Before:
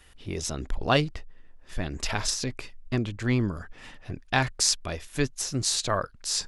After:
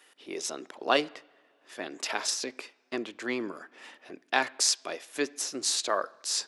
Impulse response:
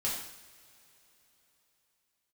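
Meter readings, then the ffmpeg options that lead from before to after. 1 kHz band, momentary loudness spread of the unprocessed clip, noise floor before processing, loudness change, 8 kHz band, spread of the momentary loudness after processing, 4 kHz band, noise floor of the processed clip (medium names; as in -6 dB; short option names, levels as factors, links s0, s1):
-1.0 dB, 17 LU, -53 dBFS, -2.5 dB, -1.5 dB, 20 LU, -1.5 dB, -67 dBFS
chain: -filter_complex "[0:a]highpass=f=300:w=0.5412,highpass=f=300:w=1.3066,asplit=2[s0][s1];[1:a]atrim=start_sample=2205,lowpass=3400[s2];[s1][s2]afir=irnorm=-1:irlink=0,volume=0.0794[s3];[s0][s3]amix=inputs=2:normalize=0,volume=0.841"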